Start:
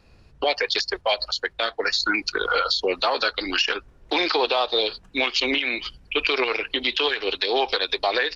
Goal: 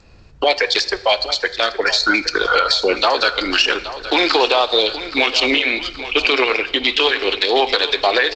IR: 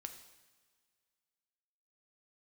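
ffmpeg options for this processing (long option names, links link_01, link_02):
-filter_complex "[0:a]aecho=1:1:822|1644|2466|3288:0.211|0.0972|0.0447|0.0206,asplit=2[link_01][link_02];[1:a]atrim=start_sample=2205[link_03];[link_02][link_03]afir=irnorm=-1:irlink=0,volume=1.5dB[link_04];[link_01][link_04]amix=inputs=2:normalize=0,volume=2dB" -ar 16000 -c:a g722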